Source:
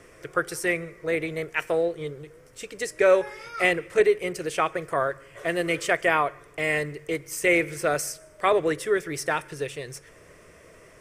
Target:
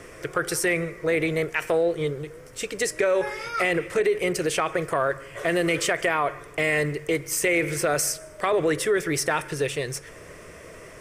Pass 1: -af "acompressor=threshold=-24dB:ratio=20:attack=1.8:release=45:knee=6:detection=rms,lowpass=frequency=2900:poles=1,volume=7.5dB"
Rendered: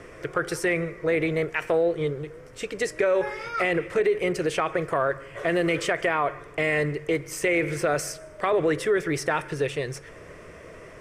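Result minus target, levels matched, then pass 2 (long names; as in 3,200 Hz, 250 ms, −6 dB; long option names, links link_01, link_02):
4,000 Hz band −3.0 dB
-af "acompressor=threshold=-24dB:ratio=20:attack=1.8:release=45:knee=6:detection=rms,volume=7.5dB"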